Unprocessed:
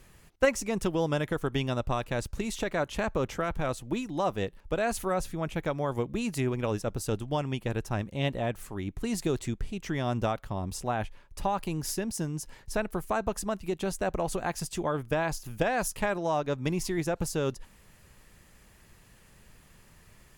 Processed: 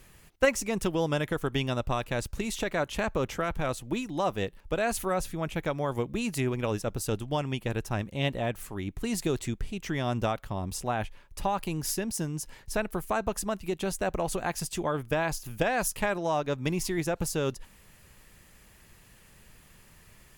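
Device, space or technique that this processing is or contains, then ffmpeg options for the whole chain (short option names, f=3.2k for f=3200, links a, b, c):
presence and air boost: -af "equalizer=f=2.7k:t=o:w=1.4:g=2.5,highshelf=f=11k:g=7"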